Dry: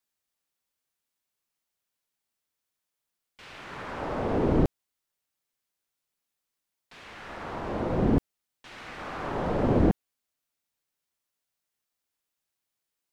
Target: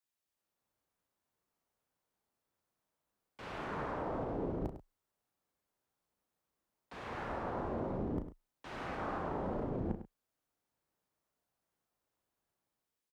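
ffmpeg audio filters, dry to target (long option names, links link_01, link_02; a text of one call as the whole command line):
ffmpeg -i in.wav -filter_complex "[0:a]acrossover=split=1300[link_01][link_02];[link_01]dynaudnorm=framelen=180:gausssize=5:maxgain=13dB[link_03];[link_03][link_02]amix=inputs=2:normalize=0,alimiter=limit=-13.5dB:level=0:latency=1:release=39,areverse,acompressor=threshold=-28dB:ratio=10,areverse,afreqshift=21,asplit=2[link_04][link_05];[link_05]adelay=35,volume=-8.5dB[link_06];[link_04][link_06]amix=inputs=2:normalize=0,aecho=1:1:102:0.251,volume=-7dB" out.wav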